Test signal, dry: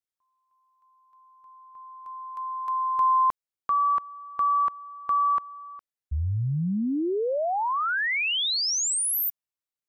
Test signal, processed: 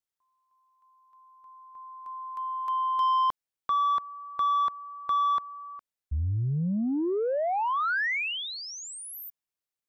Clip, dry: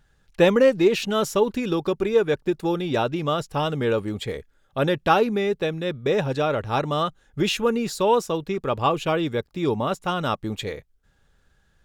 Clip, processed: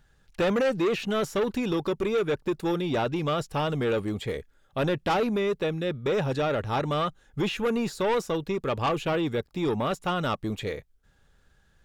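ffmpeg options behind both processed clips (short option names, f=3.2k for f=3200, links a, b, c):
-filter_complex "[0:a]acrossover=split=2400[a][b];[a]asoftclip=type=tanh:threshold=-21dB[c];[b]acompressor=threshold=-43dB:ratio=6:attack=18:release=33:detection=rms[d];[c][d]amix=inputs=2:normalize=0"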